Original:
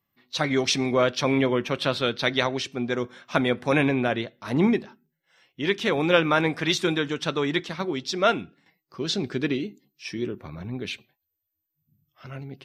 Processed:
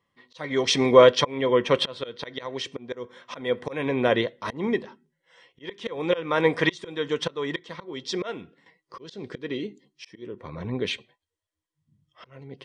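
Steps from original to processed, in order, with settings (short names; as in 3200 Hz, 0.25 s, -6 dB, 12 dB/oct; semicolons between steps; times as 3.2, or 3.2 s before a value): auto swell 0.509 s; downsampling 22050 Hz; small resonant body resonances 490/1000/1900/3200 Hz, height 11 dB, ringing for 25 ms; gain +1.5 dB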